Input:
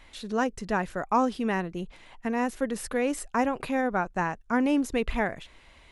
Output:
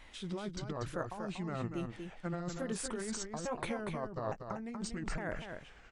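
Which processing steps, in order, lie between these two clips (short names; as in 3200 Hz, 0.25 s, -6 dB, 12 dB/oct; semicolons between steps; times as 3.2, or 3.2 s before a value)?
repeated pitch sweeps -7.5 st, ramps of 0.863 s; negative-ratio compressor -32 dBFS, ratio -1; echo 0.239 s -6.5 dB; gain -6.5 dB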